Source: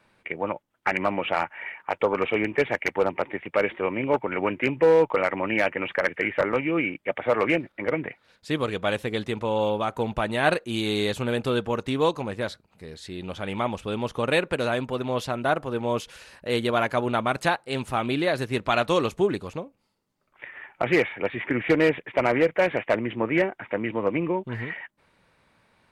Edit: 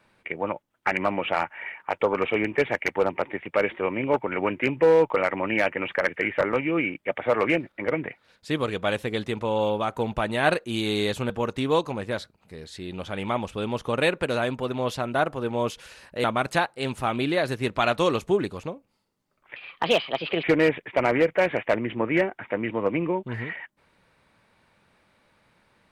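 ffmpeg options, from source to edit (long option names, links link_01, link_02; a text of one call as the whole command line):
ffmpeg -i in.wav -filter_complex "[0:a]asplit=5[link_01][link_02][link_03][link_04][link_05];[link_01]atrim=end=11.302[link_06];[link_02]atrim=start=11.598:end=16.542[link_07];[link_03]atrim=start=17.138:end=20.464[link_08];[link_04]atrim=start=20.46:end=21.64,asetpts=PTS-STARTPTS,asetrate=59535,aresample=44100[link_09];[link_05]atrim=start=21.636[link_10];[link_06][link_07]acrossfade=duration=0.004:curve1=hsin:curve2=hsin[link_11];[link_11][link_08]acrossfade=duration=0.004:curve1=hsin:curve2=hsin[link_12];[link_12][link_09]acrossfade=duration=0.004:curve1=hsin:curve2=hsin[link_13];[link_13][link_10]acrossfade=duration=0.004:curve1=hsin:curve2=hsin" out.wav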